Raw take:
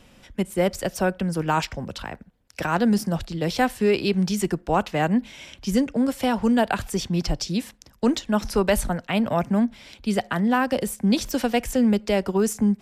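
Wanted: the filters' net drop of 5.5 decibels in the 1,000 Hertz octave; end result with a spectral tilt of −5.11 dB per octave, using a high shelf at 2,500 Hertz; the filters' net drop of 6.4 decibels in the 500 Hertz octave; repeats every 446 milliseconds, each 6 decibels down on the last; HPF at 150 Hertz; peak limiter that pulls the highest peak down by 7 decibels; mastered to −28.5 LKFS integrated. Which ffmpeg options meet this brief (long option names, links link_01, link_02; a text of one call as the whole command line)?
ffmpeg -i in.wav -af "highpass=150,equalizer=frequency=500:width_type=o:gain=-7,equalizer=frequency=1000:width_type=o:gain=-4,highshelf=frequency=2500:gain=-3.5,alimiter=limit=-20.5dB:level=0:latency=1,aecho=1:1:446|892|1338|1784|2230|2676:0.501|0.251|0.125|0.0626|0.0313|0.0157,volume=0.5dB" out.wav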